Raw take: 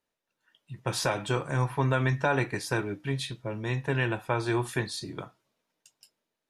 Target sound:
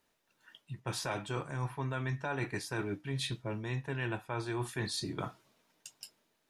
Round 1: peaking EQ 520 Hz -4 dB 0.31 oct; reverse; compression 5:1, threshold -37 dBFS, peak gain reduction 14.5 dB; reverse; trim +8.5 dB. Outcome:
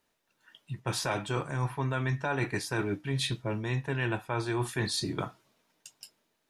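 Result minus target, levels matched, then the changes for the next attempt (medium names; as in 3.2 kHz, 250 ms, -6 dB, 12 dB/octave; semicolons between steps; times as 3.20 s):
compression: peak gain reduction -5 dB
change: compression 5:1, threshold -43.5 dBFS, peak gain reduction 19.5 dB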